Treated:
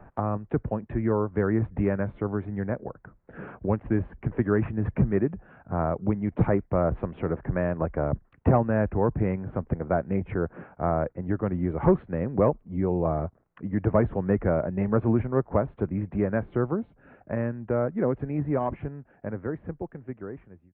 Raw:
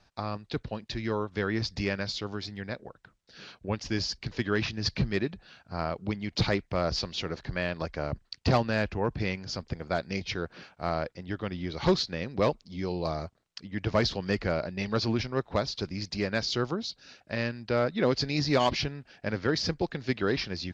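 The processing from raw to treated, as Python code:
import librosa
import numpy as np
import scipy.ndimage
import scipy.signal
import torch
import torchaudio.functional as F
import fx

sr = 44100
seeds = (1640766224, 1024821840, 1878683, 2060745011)

y = fx.fade_out_tail(x, sr, length_s=5.25)
y = scipy.ndimage.gaussian_filter1d(y, 6.2, mode='constant')
y = fx.band_squash(y, sr, depth_pct=40)
y = F.gain(torch.from_numpy(y), 6.5).numpy()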